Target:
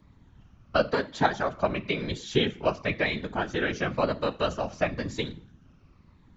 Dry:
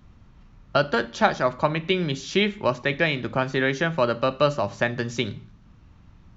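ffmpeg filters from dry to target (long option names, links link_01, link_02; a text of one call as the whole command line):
ffmpeg -i in.wav -af "afftfilt=real='re*pow(10,7/40*sin(2*PI*(0.97*log(max(b,1)*sr/1024/100)/log(2)-(-0.98)*(pts-256)/sr)))':imag='im*pow(10,7/40*sin(2*PI*(0.97*log(max(b,1)*sr/1024/100)/log(2)-(-0.98)*(pts-256)/sr)))':win_size=1024:overlap=0.75,afftfilt=real='hypot(re,im)*cos(2*PI*random(0))':imag='hypot(re,im)*sin(2*PI*random(1))':win_size=512:overlap=0.75,volume=1dB" out.wav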